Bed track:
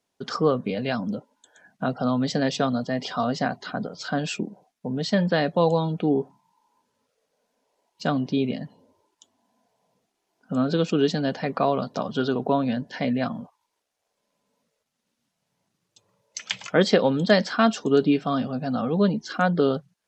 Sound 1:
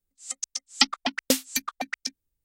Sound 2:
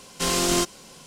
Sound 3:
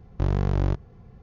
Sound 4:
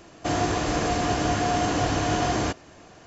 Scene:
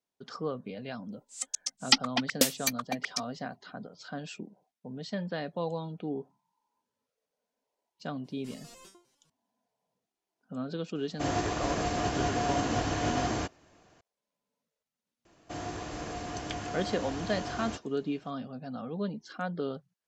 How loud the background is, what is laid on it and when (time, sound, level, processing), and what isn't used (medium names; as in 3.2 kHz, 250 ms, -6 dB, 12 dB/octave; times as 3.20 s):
bed track -13 dB
1.11 s: add 1 -2 dB
8.24 s: add 2 -14.5 dB + resonator arpeggio 9.9 Hz 130–520 Hz
10.95 s: add 4 -5 dB + upward expansion, over -36 dBFS
15.25 s: add 4 -13.5 dB
not used: 3